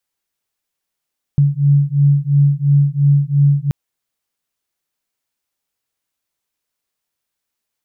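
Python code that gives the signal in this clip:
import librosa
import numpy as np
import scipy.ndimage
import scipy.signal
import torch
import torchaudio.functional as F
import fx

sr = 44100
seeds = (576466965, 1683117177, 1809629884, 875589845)

y = fx.two_tone_beats(sr, length_s=2.33, hz=141.0, beat_hz=2.9, level_db=-13.0)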